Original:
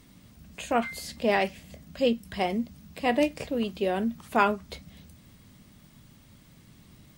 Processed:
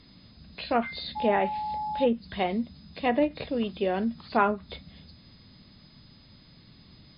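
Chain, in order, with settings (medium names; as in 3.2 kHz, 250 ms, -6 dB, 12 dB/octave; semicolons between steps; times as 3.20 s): knee-point frequency compression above 3.4 kHz 4:1; low-pass that closes with the level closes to 1.7 kHz, closed at -19.5 dBFS; 1.15–2.05 s: whistle 850 Hz -29 dBFS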